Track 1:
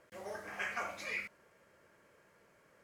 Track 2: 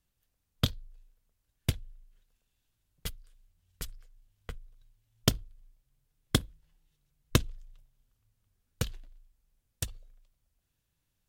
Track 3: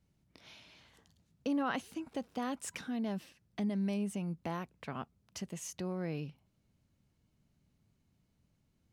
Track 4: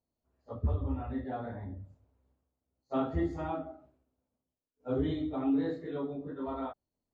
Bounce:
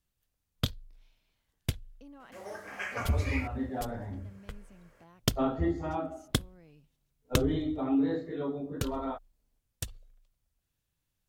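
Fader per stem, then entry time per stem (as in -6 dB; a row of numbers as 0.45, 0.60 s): +1.5, -2.5, -19.0, +2.0 dB; 2.20, 0.00, 0.55, 2.45 s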